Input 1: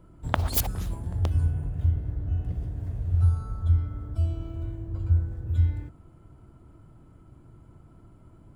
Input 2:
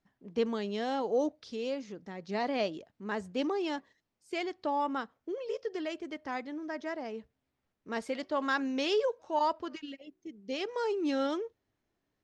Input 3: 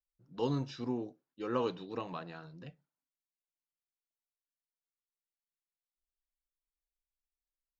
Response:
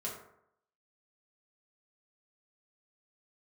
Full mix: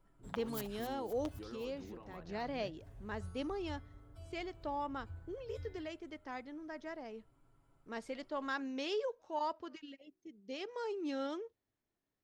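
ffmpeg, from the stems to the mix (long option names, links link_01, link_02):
-filter_complex "[0:a]equalizer=frequency=130:width=0.42:gain=-14,aecho=1:1:7.3:0.7,volume=-12dB,asplit=2[link_01][link_02];[link_02]volume=-19dB[link_03];[1:a]volume=-8dB[link_04];[2:a]lowpass=2400,acompressor=threshold=-38dB:ratio=6,alimiter=level_in=18dB:limit=-24dB:level=0:latency=1:release=473,volume=-18dB,volume=1dB,asplit=2[link_05][link_06];[link_06]apad=whole_len=377452[link_07];[link_01][link_07]sidechaincompress=threshold=-54dB:ratio=8:attack=7.8:release=227[link_08];[link_03]aecho=0:1:260|520|780|1040|1300|1560|1820|2080|2340:1|0.58|0.336|0.195|0.113|0.0656|0.0381|0.0221|0.0128[link_09];[link_08][link_04][link_05][link_09]amix=inputs=4:normalize=0"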